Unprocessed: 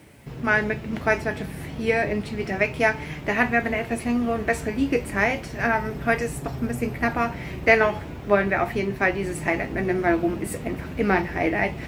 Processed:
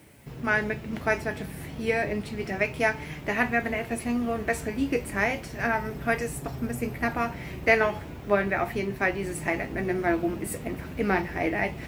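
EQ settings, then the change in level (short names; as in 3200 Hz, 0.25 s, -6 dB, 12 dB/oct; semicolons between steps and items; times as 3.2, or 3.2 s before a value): high shelf 9100 Hz +7.5 dB; -4.0 dB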